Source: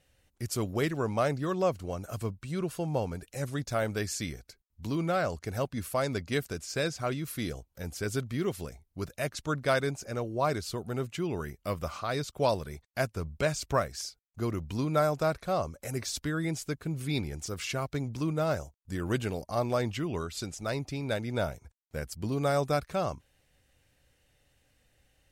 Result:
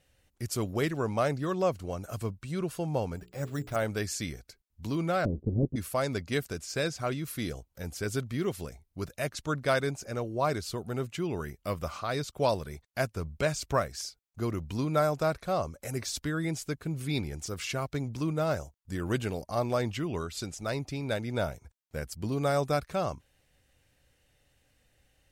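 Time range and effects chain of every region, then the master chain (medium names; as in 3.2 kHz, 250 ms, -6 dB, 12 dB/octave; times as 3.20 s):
3.16–3.76 s: treble shelf 3.6 kHz -11.5 dB + hum notches 60/120/180/240/300/360/420/480 Hz + careless resampling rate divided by 6×, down none, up hold
5.25–5.76 s: square wave that keeps the level + inverse Chebyshev low-pass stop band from 1.9 kHz, stop band 70 dB + dynamic bell 250 Hz, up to +4 dB, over -41 dBFS, Q 0.96
whole clip: none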